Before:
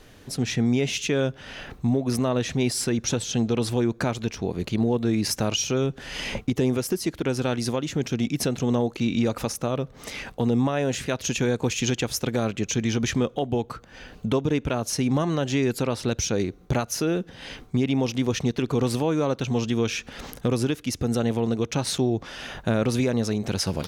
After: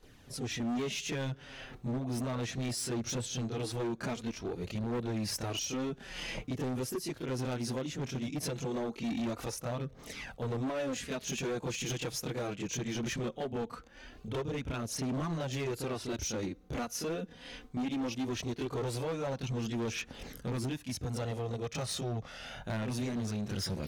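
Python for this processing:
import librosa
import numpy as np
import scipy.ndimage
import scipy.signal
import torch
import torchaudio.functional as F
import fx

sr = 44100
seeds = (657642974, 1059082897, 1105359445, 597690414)

y = fx.chorus_voices(x, sr, voices=2, hz=0.1, base_ms=27, depth_ms=4.5, mix_pct=70)
y = np.clip(10.0 ** (25.0 / 20.0) * y, -1.0, 1.0) / 10.0 ** (25.0 / 20.0)
y = y * librosa.db_to_amplitude(-6.0)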